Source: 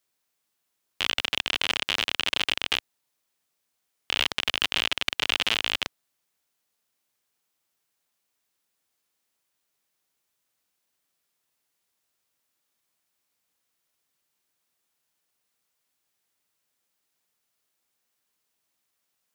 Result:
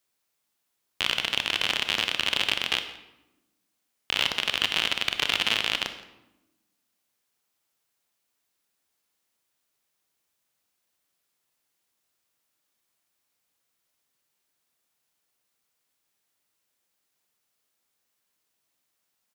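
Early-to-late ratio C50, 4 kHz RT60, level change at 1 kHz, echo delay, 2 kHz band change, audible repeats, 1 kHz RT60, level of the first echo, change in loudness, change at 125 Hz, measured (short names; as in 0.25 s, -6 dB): 9.5 dB, 0.65 s, +0.5 dB, 0.17 s, +0.5 dB, 1, 0.90 s, -21.0 dB, +0.5 dB, +0.5 dB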